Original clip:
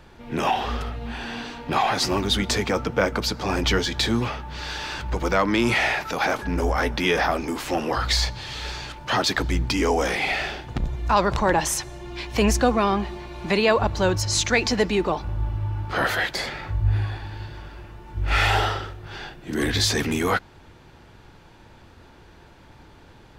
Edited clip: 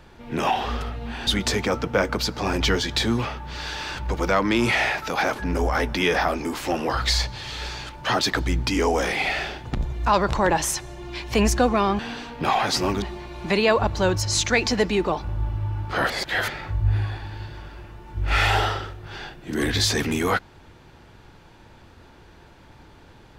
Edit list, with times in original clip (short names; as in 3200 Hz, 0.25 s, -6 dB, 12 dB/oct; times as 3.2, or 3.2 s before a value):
1.27–2.3 move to 13.02
16.1–16.48 reverse